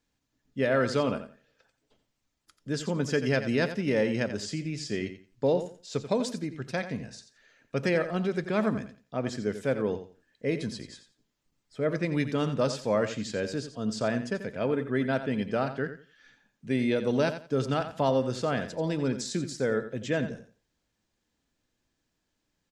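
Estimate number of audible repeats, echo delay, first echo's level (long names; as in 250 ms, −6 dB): 2, 87 ms, −11.0 dB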